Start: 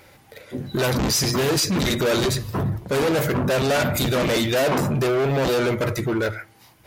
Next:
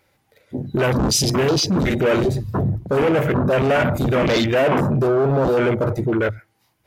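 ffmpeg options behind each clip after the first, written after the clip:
ffmpeg -i in.wav -af "afwtdn=0.0447,volume=3.5dB" out.wav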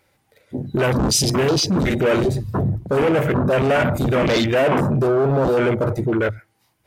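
ffmpeg -i in.wav -af "equalizer=frequency=8700:width=4:gain=4.5" out.wav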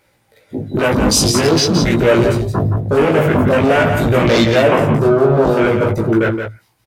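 ffmpeg -i in.wav -filter_complex "[0:a]flanger=delay=17:depth=2.7:speed=0.46,asplit=2[link_01][link_02];[link_02]aecho=0:1:171:0.447[link_03];[link_01][link_03]amix=inputs=2:normalize=0,volume=7.5dB" out.wav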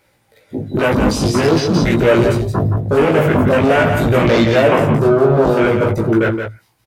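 ffmpeg -i in.wav -filter_complex "[0:a]acrossover=split=2800[link_01][link_02];[link_02]acompressor=threshold=-26dB:ratio=4:attack=1:release=60[link_03];[link_01][link_03]amix=inputs=2:normalize=0" out.wav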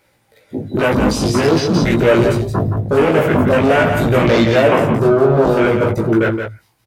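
ffmpeg -i in.wav -af "bandreject=frequency=50:width_type=h:width=6,bandreject=frequency=100:width_type=h:width=6,bandreject=frequency=150:width_type=h:width=6" out.wav

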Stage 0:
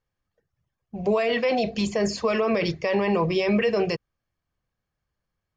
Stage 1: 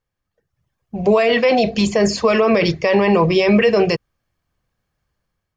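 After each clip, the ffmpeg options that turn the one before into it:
ffmpeg -i in.wav -af "dynaudnorm=framelen=230:gausssize=5:maxgain=7dB,volume=1.5dB" out.wav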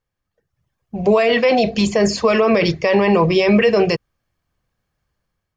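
ffmpeg -i in.wav -af anull out.wav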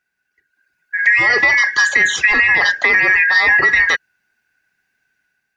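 ffmpeg -i in.wav -filter_complex "[0:a]afftfilt=real='real(if(lt(b,272),68*(eq(floor(b/68),0)*1+eq(floor(b/68),1)*0+eq(floor(b/68),2)*3+eq(floor(b/68),3)*2)+mod(b,68),b),0)':imag='imag(if(lt(b,272),68*(eq(floor(b/68),0)*1+eq(floor(b/68),1)*0+eq(floor(b/68),2)*3+eq(floor(b/68),3)*2)+mod(b,68),b),0)':win_size=2048:overlap=0.75,lowshelf=frequency=460:gain=-3.5,acrossover=split=120[link_01][link_02];[link_02]acompressor=threshold=-15dB:ratio=6[link_03];[link_01][link_03]amix=inputs=2:normalize=0,volume=5.5dB" out.wav

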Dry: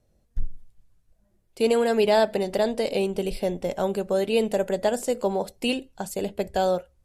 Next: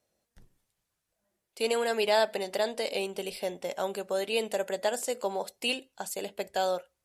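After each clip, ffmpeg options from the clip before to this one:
ffmpeg -i in.wav -af "highpass=frequency=990:poles=1" out.wav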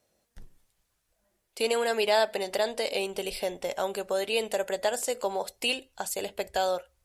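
ffmpeg -i in.wav -filter_complex "[0:a]asubboost=boost=8:cutoff=67,asplit=2[link_01][link_02];[link_02]acompressor=threshold=-37dB:ratio=6,volume=-1dB[link_03];[link_01][link_03]amix=inputs=2:normalize=0" out.wav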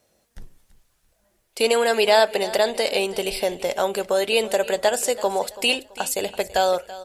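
ffmpeg -i in.wav -af "aecho=1:1:332|664|996:0.141|0.0438|0.0136,volume=7.5dB" out.wav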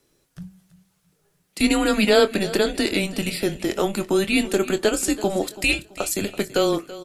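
ffmpeg -i in.wav -filter_complex "[0:a]afreqshift=-200,asplit=2[link_01][link_02];[link_02]adelay=24,volume=-12.5dB[link_03];[link_01][link_03]amix=inputs=2:normalize=0" out.wav

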